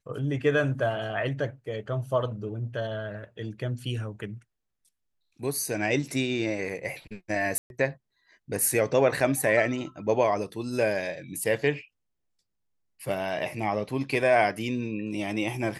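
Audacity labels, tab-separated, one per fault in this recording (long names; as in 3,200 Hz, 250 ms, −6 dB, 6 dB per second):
7.580000	7.700000	drop-out 121 ms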